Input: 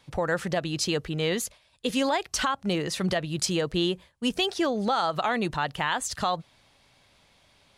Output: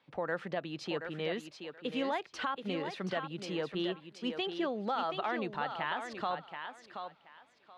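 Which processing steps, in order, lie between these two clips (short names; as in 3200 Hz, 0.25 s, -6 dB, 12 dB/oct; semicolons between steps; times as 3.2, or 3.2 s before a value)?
three-band isolator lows -21 dB, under 160 Hz, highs -24 dB, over 3800 Hz; thinning echo 0.728 s, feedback 20%, high-pass 240 Hz, level -7 dB; gain -8 dB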